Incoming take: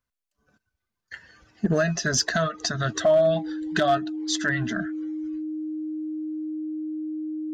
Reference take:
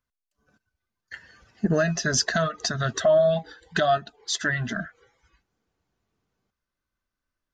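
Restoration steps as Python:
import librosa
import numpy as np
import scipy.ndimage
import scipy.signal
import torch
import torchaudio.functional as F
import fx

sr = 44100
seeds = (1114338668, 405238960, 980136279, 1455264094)

y = fx.fix_declip(x, sr, threshold_db=-13.5)
y = fx.notch(y, sr, hz=310.0, q=30.0)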